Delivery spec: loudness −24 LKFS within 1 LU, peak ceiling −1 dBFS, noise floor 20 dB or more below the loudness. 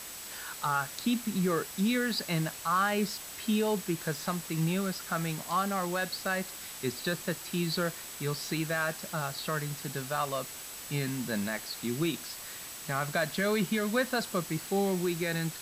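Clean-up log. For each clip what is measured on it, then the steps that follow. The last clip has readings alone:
interfering tone 7,900 Hz; level of the tone −49 dBFS; background noise floor −43 dBFS; target noise floor −52 dBFS; integrated loudness −32.0 LKFS; sample peak −16.5 dBFS; target loudness −24.0 LKFS
→ notch filter 7,900 Hz, Q 30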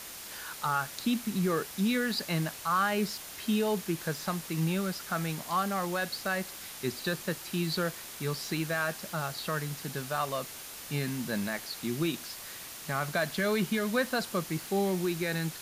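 interfering tone none found; background noise floor −44 dBFS; target noise floor −52 dBFS
→ broadband denoise 8 dB, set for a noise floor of −44 dBFS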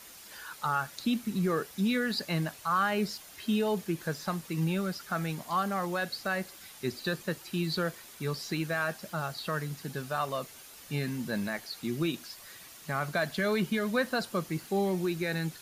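background noise floor −50 dBFS; target noise floor −52 dBFS
→ broadband denoise 6 dB, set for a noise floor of −50 dBFS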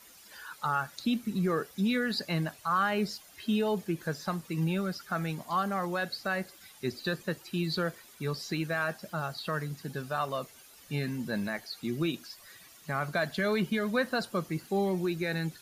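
background noise floor −55 dBFS; integrated loudness −32.0 LKFS; sample peak −17.5 dBFS; target loudness −24.0 LKFS
→ level +8 dB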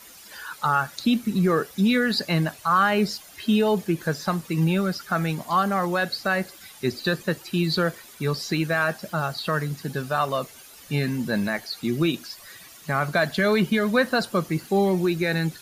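integrated loudness −24.0 LKFS; sample peak −9.5 dBFS; background noise floor −47 dBFS

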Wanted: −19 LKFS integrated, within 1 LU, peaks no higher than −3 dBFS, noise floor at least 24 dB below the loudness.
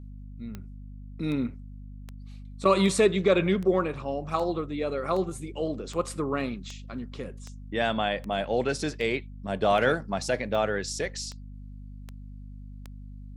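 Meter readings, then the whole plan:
number of clicks 17; mains hum 50 Hz; hum harmonics up to 250 Hz; level of the hum −40 dBFS; integrated loudness −27.5 LKFS; sample peak −9.5 dBFS; target loudness −19.0 LKFS
→ click removal
mains-hum notches 50/100/150/200/250 Hz
level +8.5 dB
brickwall limiter −3 dBFS

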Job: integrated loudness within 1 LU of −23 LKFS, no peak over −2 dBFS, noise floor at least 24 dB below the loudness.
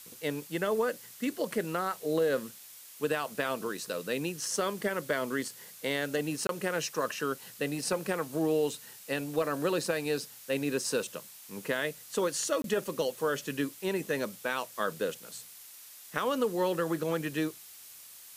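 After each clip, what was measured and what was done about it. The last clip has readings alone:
number of dropouts 2; longest dropout 22 ms; background noise floor −50 dBFS; target noise floor −57 dBFS; integrated loudness −32.5 LKFS; sample peak −14.5 dBFS; target loudness −23.0 LKFS
→ repair the gap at 0:06.47/0:12.62, 22 ms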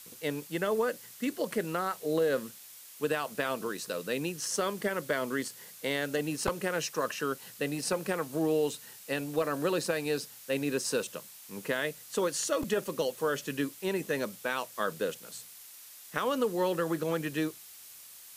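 number of dropouts 0; background noise floor −50 dBFS; target noise floor −57 dBFS
→ broadband denoise 7 dB, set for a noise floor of −50 dBFS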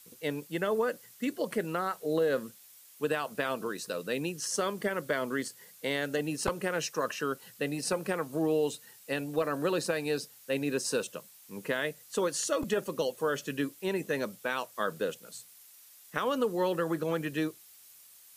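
background noise floor −56 dBFS; target noise floor −57 dBFS
→ broadband denoise 6 dB, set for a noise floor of −56 dBFS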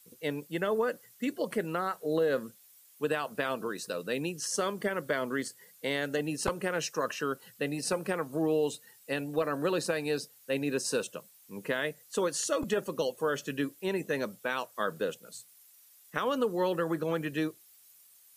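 background noise floor −59 dBFS; integrated loudness −32.5 LKFS; sample peak −14.5 dBFS; target loudness −23.0 LKFS
→ level +9.5 dB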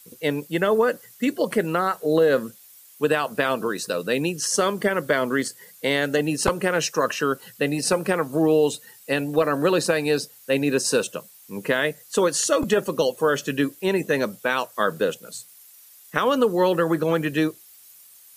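integrated loudness −23.0 LKFS; sample peak −5.0 dBFS; background noise floor −50 dBFS

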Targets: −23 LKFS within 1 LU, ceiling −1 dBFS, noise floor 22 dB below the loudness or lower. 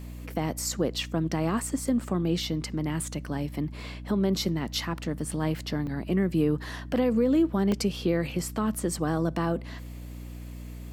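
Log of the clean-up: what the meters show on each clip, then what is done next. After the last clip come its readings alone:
number of dropouts 2; longest dropout 1.9 ms; mains hum 60 Hz; hum harmonics up to 300 Hz; level of the hum −37 dBFS; integrated loudness −28.5 LKFS; sample peak −14.5 dBFS; target loudness −23.0 LKFS
→ repair the gap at 0:05.87/0:07.72, 1.9 ms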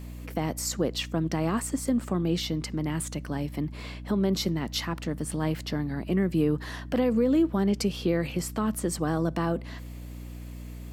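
number of dropouts 0; mains hum 60 Hz; hum harmonics up to 300 Hz; level of the hum −37 dBFS
→ mains-hum notches 60/120/180/240/300 Hz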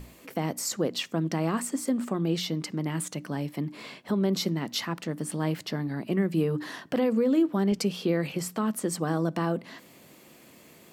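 mains hum none found; integrated loudness −29.0 LKFS; sample peak −14.0 dBFS; target loudness −23.0 LKFS
→ level +6 dB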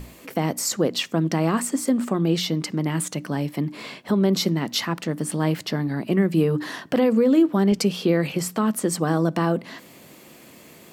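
integrated loudness −23.0 LKFS; sample peak −8.0 dBFS; background noise floor −48 dBFS

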